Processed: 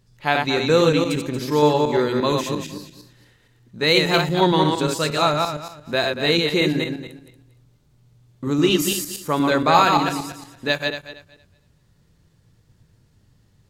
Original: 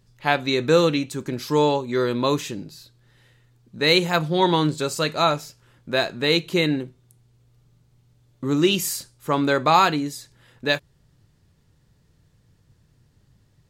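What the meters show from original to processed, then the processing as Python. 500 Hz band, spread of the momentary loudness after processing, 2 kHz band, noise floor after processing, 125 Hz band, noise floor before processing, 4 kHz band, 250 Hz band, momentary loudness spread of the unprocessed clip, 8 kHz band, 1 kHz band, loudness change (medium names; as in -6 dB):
+2.0 dB, 13 LU, +2.0 dB, -60 dBFS, +2.5 dB, -62 dBFS, +2.0 dB, +2.0 dB, 12 LU, +2.0 dB, +2.0 dB, +2.0 dB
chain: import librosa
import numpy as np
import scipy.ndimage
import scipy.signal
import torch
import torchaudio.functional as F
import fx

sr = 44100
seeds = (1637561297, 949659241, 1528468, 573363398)

y = fx.reverse_delay_fb(x, sr, ms=116, feedback_pct=45, wet_db=-3.0)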